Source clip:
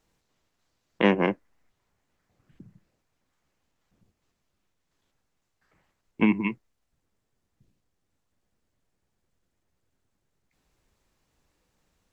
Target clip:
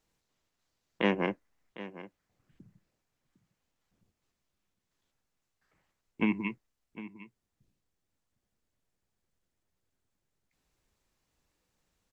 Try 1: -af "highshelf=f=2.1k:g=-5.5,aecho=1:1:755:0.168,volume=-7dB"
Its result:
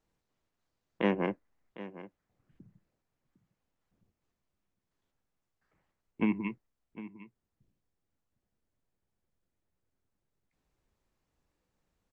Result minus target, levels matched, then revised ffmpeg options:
4000 Hz band -5.0 dB
-af "highshelf=f=2.1k:g=3.5,aecho=1:1:755:0.168,volume=-7dB"

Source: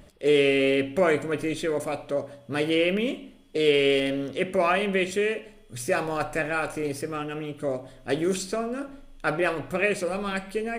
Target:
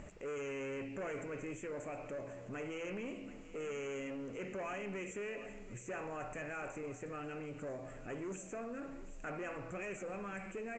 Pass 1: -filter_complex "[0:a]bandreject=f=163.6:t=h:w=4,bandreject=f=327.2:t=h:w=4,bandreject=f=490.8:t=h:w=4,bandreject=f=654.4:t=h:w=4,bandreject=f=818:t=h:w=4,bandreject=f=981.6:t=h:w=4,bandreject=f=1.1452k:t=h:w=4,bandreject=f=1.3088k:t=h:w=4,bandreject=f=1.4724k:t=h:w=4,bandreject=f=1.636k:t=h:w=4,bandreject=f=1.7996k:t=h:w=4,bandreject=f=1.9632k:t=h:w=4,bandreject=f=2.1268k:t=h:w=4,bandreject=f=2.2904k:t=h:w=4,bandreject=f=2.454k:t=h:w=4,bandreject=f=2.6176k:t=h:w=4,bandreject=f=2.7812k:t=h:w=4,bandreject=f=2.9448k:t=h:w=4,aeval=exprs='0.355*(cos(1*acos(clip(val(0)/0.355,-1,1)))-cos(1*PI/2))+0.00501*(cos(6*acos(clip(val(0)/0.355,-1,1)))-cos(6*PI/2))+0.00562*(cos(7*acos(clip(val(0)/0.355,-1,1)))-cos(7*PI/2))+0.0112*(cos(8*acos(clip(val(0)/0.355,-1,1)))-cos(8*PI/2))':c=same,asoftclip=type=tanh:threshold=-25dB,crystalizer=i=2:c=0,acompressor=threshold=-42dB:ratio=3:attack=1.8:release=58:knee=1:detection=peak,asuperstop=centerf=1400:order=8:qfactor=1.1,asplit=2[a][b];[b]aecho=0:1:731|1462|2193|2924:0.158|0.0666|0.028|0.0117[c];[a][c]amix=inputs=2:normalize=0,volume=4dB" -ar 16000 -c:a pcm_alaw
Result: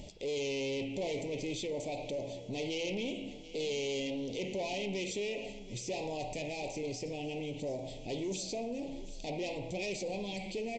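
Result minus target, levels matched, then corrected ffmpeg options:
4000 Hz band +12.0 dB; compressor: peak gain reduction -6 dB
-filter_complex "[0:a]bandreject=f=163.6:t=h:w=4,bandreject=f=327.2:t=h:w=4,bandreject=f=490.8:t=h:w=4,bandreject=f=654.4:t=h:w=4,bandreject=f=818:t=h:w=4,bandreject=f=981.6:t=h:w=4,bandreject=f=1.1452k:t=h:w=4,bandreject=f=1.3088k:t=h:w=4,bandreject=f=1.4724k:t=h:w=4,bandreject=f=1.636k:t=h:w=4,bandreject=f=1.7996k:t=h:w=4,bandreject=f=1.9632k:t=h:w=4,bandreject=f=2.1268k:t=h:w=4,bandreject=f=2.2904k:t=h:w=4,bandreject=f=2.454k:t=h:w=4,bandreject=f=2.6176k:t=h:w=4,bandreject=f=2.7812k:t=h:w=4,bandreject=f=2.9448k:t=h:w=4,aeval=exprs='0.355*(cos(1*acos(clip(val(0)/0.355,-1,1)))-cos(1*PI/2))+0.00501*(cos(6*acos(clip(val(0)/0.355,-1,1)))-cos(6*PI/2))+0.00562*(cos(7*acos(clip(val(0)/0.355,-1,1)))-cos(7*PI/2))+0.0112*(cos(8*acos(clip(val(0)/0.355,-1,1)))-cos(8*PI/2))':c=same,asoftclip=type=tanh:threshold=-25dB,crystalizer=i=2:c=0,acompressor=threshold=-51dB:ratio=3:attack=1.8:release=58:knee=1:detection=peak,asuperstop=centerf=4300:order=8:qfactor=1.1,asplit=2[a][b];[b]aecho=0:1:731|1462|2193|2924:0.158|0.0666|0.028|0.0117[c];[a][c]amix=inputs=2:normalize=0,volume=4dB" -ar 16000 -c:a pcm_alaw

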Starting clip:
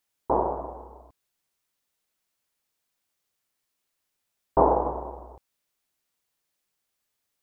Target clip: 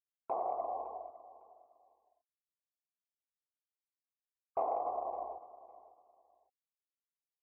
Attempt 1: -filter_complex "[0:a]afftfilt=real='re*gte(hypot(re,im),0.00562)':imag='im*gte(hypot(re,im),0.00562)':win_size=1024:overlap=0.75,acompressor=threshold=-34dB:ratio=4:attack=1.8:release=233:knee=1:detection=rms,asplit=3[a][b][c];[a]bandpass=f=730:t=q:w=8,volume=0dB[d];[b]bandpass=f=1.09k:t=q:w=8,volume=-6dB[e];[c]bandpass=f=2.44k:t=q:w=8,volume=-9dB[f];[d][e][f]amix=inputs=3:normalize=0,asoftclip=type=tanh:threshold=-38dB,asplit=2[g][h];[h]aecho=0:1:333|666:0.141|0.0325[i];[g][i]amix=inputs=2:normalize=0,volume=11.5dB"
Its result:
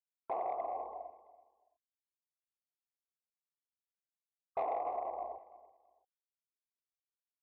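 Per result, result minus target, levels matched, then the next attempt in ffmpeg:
soft clip: distortion +17 dB; echo 0.224 s early
-filter_complex "[0:a]afftfilt=real='re*gte(hypot(re,im),0.00562)':imag='im*gte(hypot(re,im),0.00562)':win_size=1024:overlap=0.75,acompressor=threshold=-34dB:ratio=4:attack=1.8:release=233:knee=1:detection=rms,asplit=3[a][b][c];[a]bandpass=f=730:t=q:w=8,volume=0dB[d];[b]bandpass=f=1.09k:t=q:w=8,volume=-6dB[e];[c]bandpass=f=2.44k:t=q:w=8,volume=-9dB[f];[d][e][f]amix=inputs=3:normalize=0,asoftclip=type=tanh:threshold=-28dB,asplit=2[g][h];[h]aecho=0:1:333|666:0.141|0.0325[i];[g][i]amix=inputs=2:normalize=0,volume=11.5dB"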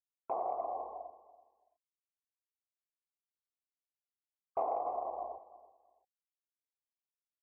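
echo 0.224 s early
-filter_complex "[0:a]afftfilt=real='re*gte(hypot(re,im),0.00562)':imag='im*gte(hypot(re,im),0.00562)':win_size=1024:overlap=0.75,acompressor=threshold=-34dB:ratio=4:attack=1.8:release=233:knee=1:detection=rms,asplit=3[a][b][c];[a]bandpass=f=730:t=q:w=8,volume=0dB[d];[b]bandpass=f=1.09k:t=q:w=8,volume=-6dB[e];[c]bandpass=f=2.44k:t=q:w=8,volume=-9dB[f];[d][e][f]amix=inputs=3:normalize=0,asoftclip=type=tanh:threshold=-28dB,asplit=2[g][h];[h]aecho=0:1:557|1114:0.141|0.0325[i];[g][i]amix=inputs=2:normalize=0,volume=11.5dB"

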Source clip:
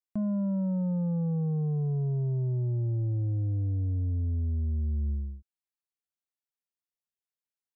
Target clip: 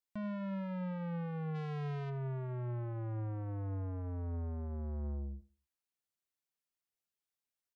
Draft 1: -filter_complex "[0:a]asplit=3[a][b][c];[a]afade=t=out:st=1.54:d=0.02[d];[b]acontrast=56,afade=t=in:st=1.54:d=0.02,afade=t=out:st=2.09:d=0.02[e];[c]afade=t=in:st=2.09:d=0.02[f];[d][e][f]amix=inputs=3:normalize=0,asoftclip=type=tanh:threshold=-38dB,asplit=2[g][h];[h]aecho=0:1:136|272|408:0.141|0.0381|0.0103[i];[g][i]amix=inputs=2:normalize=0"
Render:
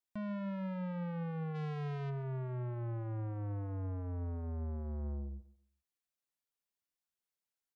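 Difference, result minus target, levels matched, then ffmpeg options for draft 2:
echo 54 ms late
-filter_complex "[0:a]asplit=3[a][b][c];[a]afade=t=out:st=1.54:d=0.02[d];[b]acontrast=56,afade=t=in:st=1.54:d=0.02,afade=t=out:st=2.09:d=0.02[e];[c]afade=t=in:st=2.09:d=0.02[f];[d][e][f]amix=inputs=3:normalize=0,asoftclip=type=tanh:threshold=-38dB,asplit=2[g][h];[h]aecho=0:1:82|164|246:0.141|0.0381|0.0103[i];[g][i]amix=inputs=2:normalize=0"

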